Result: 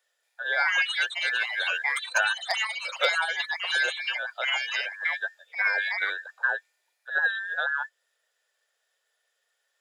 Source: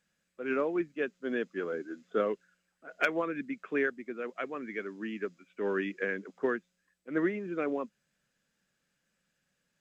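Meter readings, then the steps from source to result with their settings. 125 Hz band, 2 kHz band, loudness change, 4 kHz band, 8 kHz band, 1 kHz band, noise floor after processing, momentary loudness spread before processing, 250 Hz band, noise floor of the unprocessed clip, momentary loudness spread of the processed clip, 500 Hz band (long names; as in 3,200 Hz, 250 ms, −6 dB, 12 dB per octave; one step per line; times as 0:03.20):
below −40 dB, +13.5 dB, +7.5 dB, +23.0 dB, can't be measured, +7.0 dB, −77 dBFS, 9 LU, below −30 dB, −80 dBFS, 6 LU, −6.5 dB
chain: frequency inversion band by band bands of 2,000 Hz
Butterworth high-pass 490 Hz 48 dB per octave
delay with pitch and tempo change per echo 231 ms, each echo +5 semitones, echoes 3
level +4 dB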